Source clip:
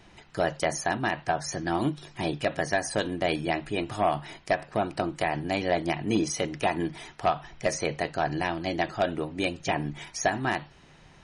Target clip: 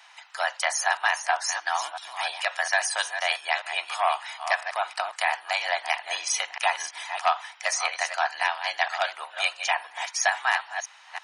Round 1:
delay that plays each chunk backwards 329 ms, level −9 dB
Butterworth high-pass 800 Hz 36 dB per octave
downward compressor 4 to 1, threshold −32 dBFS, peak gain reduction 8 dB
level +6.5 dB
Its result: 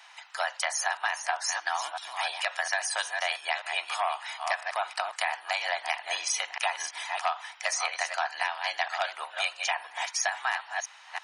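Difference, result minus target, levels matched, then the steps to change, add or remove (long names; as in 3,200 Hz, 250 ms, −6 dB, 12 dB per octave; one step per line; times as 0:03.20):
downward compressor: peak gain reduction +8 dB
remove: downward compressor 4 to 1, threshold −32 dBFS, peak gain reduction 8 dB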